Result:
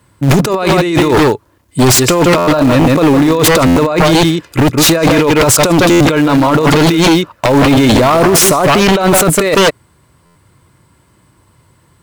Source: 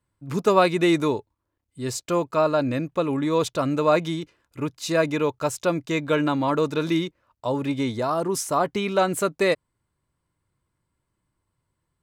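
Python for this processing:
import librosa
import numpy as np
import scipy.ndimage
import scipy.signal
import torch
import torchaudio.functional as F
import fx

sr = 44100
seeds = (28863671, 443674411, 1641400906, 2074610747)

p1 = x + fx.echo_single(x, sr, ms=157, db=-11.0, dry=0)
p2 = fx.over_compress(p1, sr, threshold_db=-29.0, ratio=-1.0)
p3 = np.where(np.abs(p2) >= 10.0 ** (-27.5 / 20.0), p2, 0.0)
p4 = p2 + F.gain(torch.from_numpy(p3), -7.0).numpy()
p5 = scipy.signal.sosfilt(scipy.signal.butter(2, 64.0, 'highpass', fs=sr, output='sos'), p4)
p6 = fx.fold_sine(p5, sr, drive_db=13, ceiling_db=-9.0)
p7 = fx.buffer_glitch(p6, sr, at_s=(2.37, 3.66, 5.9, 10.25), block=512, repeats=8)
y = F.gain(torch.from_numpy(p7), 5.0).numpy()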